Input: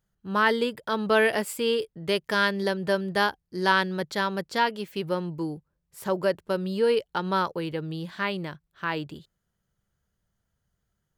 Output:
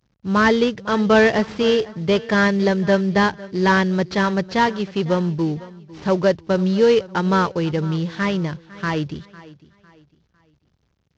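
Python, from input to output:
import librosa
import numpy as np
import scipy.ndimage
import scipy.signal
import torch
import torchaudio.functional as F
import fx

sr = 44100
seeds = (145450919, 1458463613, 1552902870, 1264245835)

y = fx.cvsd(x, sr, bps=32000)
y = scipy.signal.sosfilt(scipy.signal.butter(2, 60.0, 'highpass', fs=sr, output='sos'), y)
y = fx.low_shelf(y, sr, hz=170.0, db=11.5)
y = fx.echo_feedback(y, sr, ms=503, feedback_pct=35, wet_db=-19.5)
y = y * 10.0 ** (6.5 / 20.0)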